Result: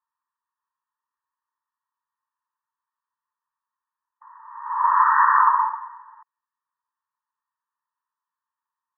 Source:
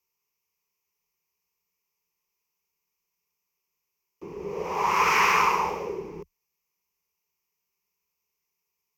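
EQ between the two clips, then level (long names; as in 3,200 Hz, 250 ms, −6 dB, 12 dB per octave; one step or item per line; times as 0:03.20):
linear-phase brick-wall high-pass 860 Hz
linear-phase brick-wall low-pass 1,900 Hz
+6.5 dB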